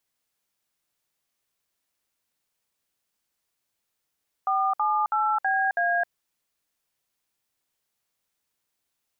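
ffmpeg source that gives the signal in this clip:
ffmpeg -f lavfi -i "aevalsrc='0.0668*clip(min(mod(t,0.325),0.265-mod(t,0.325))/0.002,0,1)*(eq(floor(t/0.325),0)*(sin(2*PI*770*mod(t,0.325))+sin(2*PI*1209*mod(t,0.325)))+eq(floor(t/0.325),1)*(sin(2*PI*852*mod(t,0.325))+sin(2*PI*1209*mod(t,0.325)))+eq(floor(t/0.325),2)*(sin(2*PI*852*mod(t,0.325))+sin(2*PI*1336*mod(t,0.325)))+eq(floor(t/0.325),3)*(sin(2*PI*770*mod(t,0.325))+sin(2*PI*1633*mod(t,0.325)))+eq(floor(t/0.325),4)*(sin(2*PI*697*mod(t,0.325))+sin(2*PI*1633*mod(t,0.325))))':duration=1.625:sample_rate=44100" out.wav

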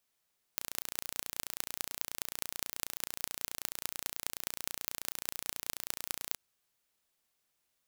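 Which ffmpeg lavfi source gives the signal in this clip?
ffmpeg -f lavfi -i "aevalsrc='0.562*eq(mod(n,1505),0)*(0.5+0.5*eq(mod(n,9030),0))':duration=5.79:sample_rate=44100" out.wav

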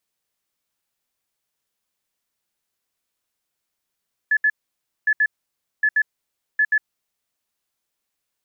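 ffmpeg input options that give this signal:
ffmpeg -f lavfi -i "aevalsrc='0.2*sin(2*PI*1720*t)*clip(min(mod(mod(t,0.76),0.13),0.06-mod(mod(t,0.76),0.13))/0.005,0,1)*lt(mod(t,0.76),0.26)':duration=3.04:sample_rate=44100" out.wav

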